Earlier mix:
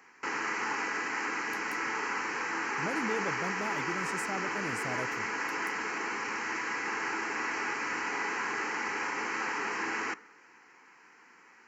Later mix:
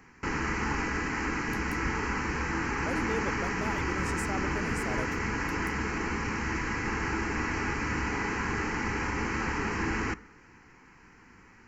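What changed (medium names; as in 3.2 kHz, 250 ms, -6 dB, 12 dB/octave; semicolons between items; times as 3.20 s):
speech: send on; background: remove high-pass 470 Hz 12 dB/octave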